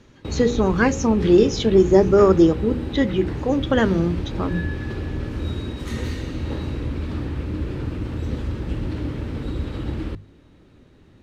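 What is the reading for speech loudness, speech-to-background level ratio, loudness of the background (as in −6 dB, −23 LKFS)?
−19.0 LKFS, 10.0 dB, −29.0 LKFS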